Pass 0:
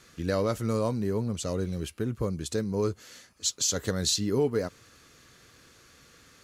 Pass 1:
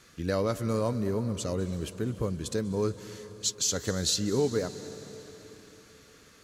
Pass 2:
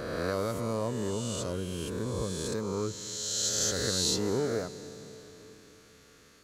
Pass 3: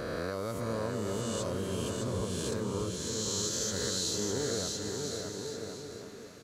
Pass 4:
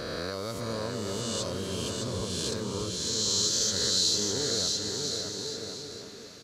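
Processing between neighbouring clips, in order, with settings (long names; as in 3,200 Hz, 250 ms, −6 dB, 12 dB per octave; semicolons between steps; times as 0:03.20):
convolution reverb RT60 3.8 s, pre-delay 185 ms, DRR 12.5 dB; level −1 dB
peak hold with a rise ahead of every peak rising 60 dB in 1.99 s; level −5.5 dB
downward compressor, threshold −31 dBFS, peak gain reduction 7 dB; on a send: bouncing-ball delay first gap 610 ms, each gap 0.75×, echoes 5
parametric band 4,500 Hz +10.5 dB 1.2 octaves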